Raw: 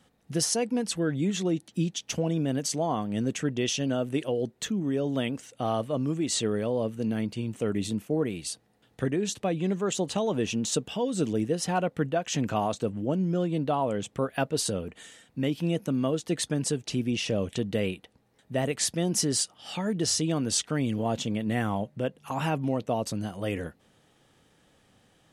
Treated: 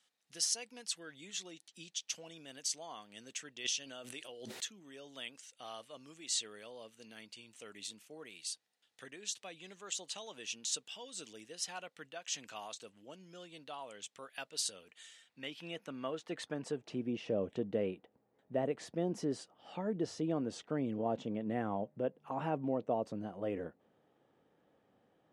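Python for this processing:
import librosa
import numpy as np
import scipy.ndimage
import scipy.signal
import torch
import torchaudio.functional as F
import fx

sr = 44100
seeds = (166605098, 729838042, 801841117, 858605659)

y = fx.filter_sweep_bandpass(x, sr, from_hz=5200.0, to_hz=500.0, start_s=14.85, end_s=17.19, q=0.73)
y = fx.pre_swell(y, sr, db_per_s=52.0, at=(3.64, 4.6), fade=0.02)
y = y * 10.0 ** (-4.5 / 20.0)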